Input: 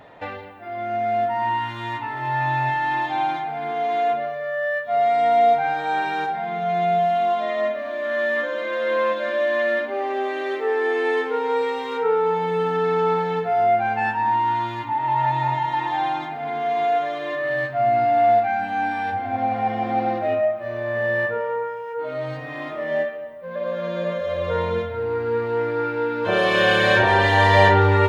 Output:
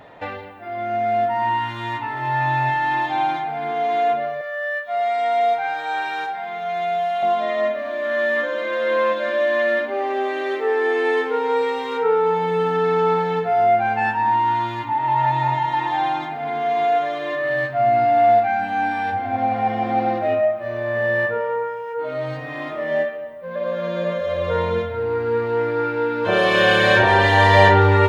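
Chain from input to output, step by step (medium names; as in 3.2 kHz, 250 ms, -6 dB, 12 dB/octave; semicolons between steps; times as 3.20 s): 4.41–7.23 s: high-pass 950 Hz 6 dB/octave; trim +2 dB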